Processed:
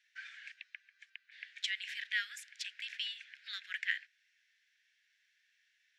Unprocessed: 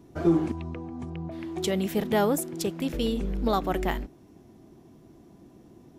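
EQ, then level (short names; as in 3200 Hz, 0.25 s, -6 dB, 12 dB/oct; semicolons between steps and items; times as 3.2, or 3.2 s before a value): steep high-pass 1600 Hz 96 dB/oct; tape spacing loss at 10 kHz 30 dB; +9.0 dB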